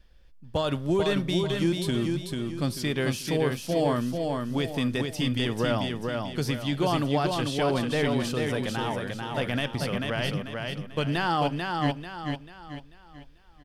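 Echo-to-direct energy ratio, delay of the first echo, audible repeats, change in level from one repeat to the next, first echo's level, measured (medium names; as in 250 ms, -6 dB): -3.5 dB, 441 ms, 4, -8.0 dB, -4.0 dB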